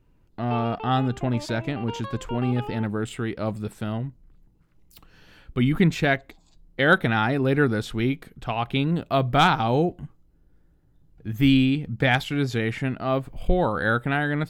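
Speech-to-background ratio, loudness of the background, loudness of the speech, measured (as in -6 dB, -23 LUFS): 14.0 dB, -38.0 LUFS, -24.0 LUFS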